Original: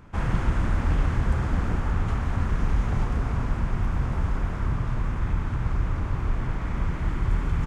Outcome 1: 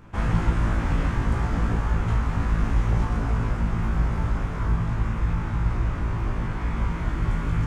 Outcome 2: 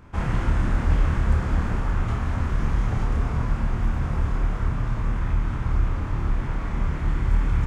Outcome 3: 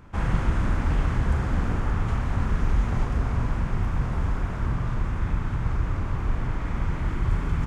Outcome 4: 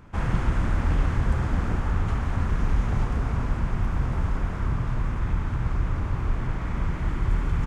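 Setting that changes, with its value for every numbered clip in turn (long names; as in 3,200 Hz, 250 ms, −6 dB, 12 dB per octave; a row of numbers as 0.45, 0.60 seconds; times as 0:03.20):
flutter between parallel walls, walls apart: 3.1, 4.6, 7.3, 12.4 metres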